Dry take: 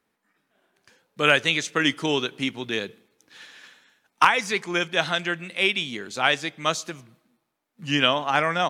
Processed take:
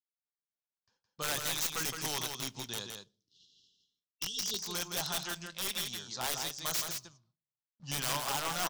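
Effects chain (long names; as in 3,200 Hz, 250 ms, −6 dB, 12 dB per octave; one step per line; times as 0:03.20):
mu-law and A-law mismatch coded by A
noise gate with hold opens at −50 dBFS
time-frequency box erased 0:02.88–0:04.59, 470–2,700 Hz
low-pass that shuts in the quiet parts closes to 2,700 Hz, open at −23 dBFS
drawn EQ curve 130 Hz 0 dB, 280 Hz −11 dB, 460 Hz −10 dB, 1,000 Hz 0 dB, 2,200 Hz −14 dB, 5,400 Hz +14 dB, 7,700 Hz +7 dB, 13,000 Hz −12 dB
wrap-around overflow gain 19.5 dB
single-tap delay 166 ms −5.5 dB
on a send at −23 dB: convolution reverb RT60 0.40 s, pre-delay 5 ms
on the sum: level −6.5 dB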